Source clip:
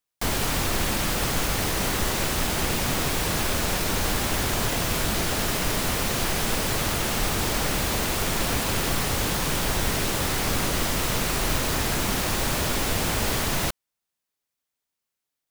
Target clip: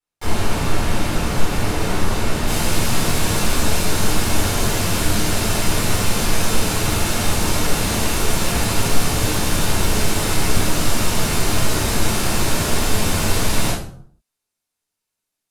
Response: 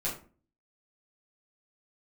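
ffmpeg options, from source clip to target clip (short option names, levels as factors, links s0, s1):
-filter_complex "[0:a]asetnsamples=n=441:p=0,asendcmd='2.47 highshelf g 4',highshelf=f=3600:g=-5[s0];[1:a]atrim=start_sample=2205,afade=t=out:st=0.35:d=0.01,atrim=end_sample=15876,asetrate=26460,aresample=44100[s1];[s0][s1]afir=irnorm=-1:irlink=0,volume=0.562"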